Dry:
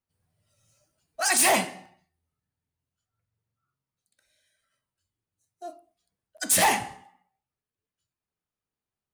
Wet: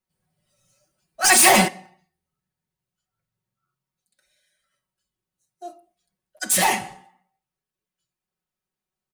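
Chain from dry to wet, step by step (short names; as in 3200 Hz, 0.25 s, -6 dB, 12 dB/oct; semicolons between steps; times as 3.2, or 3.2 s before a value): 1.24–1.68 sample leveller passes 3; comb 5.4 ms, depth 80%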